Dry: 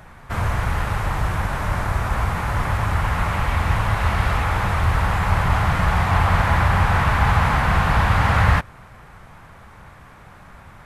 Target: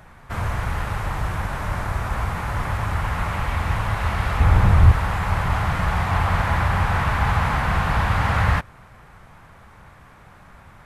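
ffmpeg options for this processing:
-filter_complex "[0:a]asettb=1/sr,asplit=3[s0][s1][s2];[s0]atrim=end=4.404[s3];[s1]atrim=start=4.4:end=4.92,asetpts=PTS-STARTPTS,afade=t=in:d=0.004:c=qsin,afade=t=out:st=0.516:d=0.004:c=qsin,lowshelf=f=380:g=11.5[s4];[s2]atrim=start=4.916[s5];[s3][s4]acrossfade=d=0.004:c1=hsin:c2=qsin[s6];[s6][s5]acrossfade=d=0.004:c1=qsin:c2=hsin,volume=0.708"

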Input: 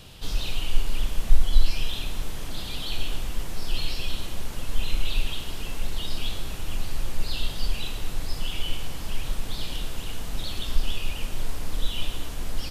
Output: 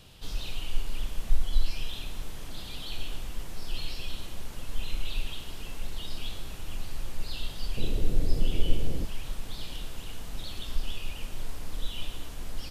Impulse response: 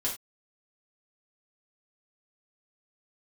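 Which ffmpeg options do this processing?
-filter_complex "[0:a]asettb=1/sr,asplit=3[s0][s1][s2];[s0]atrim=end=7.774[s3];[s1]atrim=start=7.77:end=9.05,asetpts=PTS-STARTPTS,afade=t=in:d=0.004:c=qsin,afade=t=out:st=1.276:d=0.004:c=qsin,lowshelf=f=660:t=q:w=1.5:g=11.5[s4];[s2]atrim=start=9.046[s5];[s3][s4]acrossfade=d=0.004:c1=hsin:c2=qsin[s6];[s6][s5]acrossfade=d=0.004:c1=qsin:c2=hsin,volume=0.473"

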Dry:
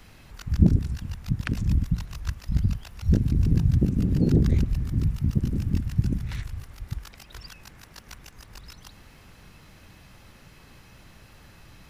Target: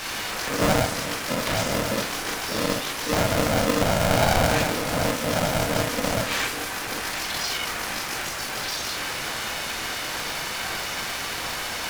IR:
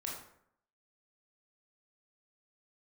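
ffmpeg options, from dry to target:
-filter_complex "[0:a]bass=f=250:g=-14,treble=f=4000:g=12,asplit=2[s0][s1];[s1]highpass=f=720:p=1,volume=70.8,asoftclip=type=tanh:threshold=0.316[s2];[s0][s2]amix=inputs=2:normalize=0,lowpass=f=1900:p=1,volume=0.501[s3];[1:a]atrim=start_sample=2205,atrim=end_sample=3969[s4];[s3][s4]afir=irnorm=-1:irlink=0,aeval=exprs='val(0)*sgn(sin(2*PI*380*n/s))':c=same"

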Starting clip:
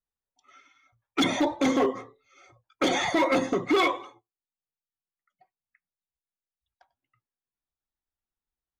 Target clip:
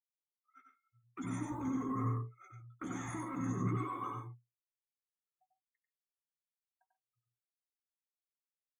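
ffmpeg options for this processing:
-filter_complex "[0:a]acrossover=split=660|1200[s0][s1][s2];[s1]acrusher=bits=2:mode=log:mix=0:aa=0.000001[s3];[s0][s3][s2]amix=inputs=3:normalize=0,acontrast=27,agate=range=0.178:threshold=0.00398:ratio=16:detection=peak,alimiter=level_in=5.31:limit=0.0631:level=0:latency=1:release=12,volume=0.188,asplit=2[s4][s5];[s5]adelay=16,volume=0.398[s6];[s4][s6]amix=inputs=2:normalize=0,afftdn=nr=32:nf=-59,equalizer=f=120:t=o:w=0.24:g=11.5,dynaudnorm=f=180:g=11:m=5.01,firequalizer=gain_entry='entry(130,0);entry(210,3);entry(580,-22);entry(1100,-1);entry(2200,-14);entry(4700,-29);entry(7700,14)':delay=0.05:min_phase=1,asplit=2[s7][s8];[s8]aecho=0:1:94|135|144:0.668|0.188|0.126[s9];[s7][s9]amix=inputs=2:normalize=0,volume=0.562"

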